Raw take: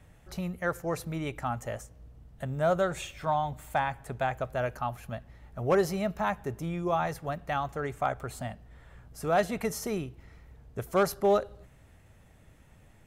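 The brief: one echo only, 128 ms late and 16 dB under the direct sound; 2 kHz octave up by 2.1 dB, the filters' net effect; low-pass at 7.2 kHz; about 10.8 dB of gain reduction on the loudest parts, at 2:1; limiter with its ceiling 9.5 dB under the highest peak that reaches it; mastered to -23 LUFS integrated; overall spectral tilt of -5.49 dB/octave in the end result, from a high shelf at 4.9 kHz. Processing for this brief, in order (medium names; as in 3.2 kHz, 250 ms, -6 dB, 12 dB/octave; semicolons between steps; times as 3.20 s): low-pass 7.2 kHz; peaking EQ 2 kHz +3.5 dB; treble shelf 4.9 kHz -5 dB; compression 2:1, threshold -40 dBFS; peak limiter -32.5 dBFS; delay 128 ms -16 dB; trim +20 dB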